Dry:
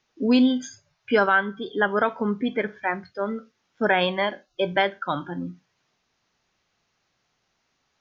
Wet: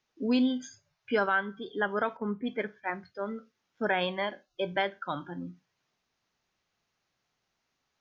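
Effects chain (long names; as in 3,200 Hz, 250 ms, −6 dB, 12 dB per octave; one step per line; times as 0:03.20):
0:02.17–0:02.90: multiband upward and downward expander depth 100%
level −7.5 dB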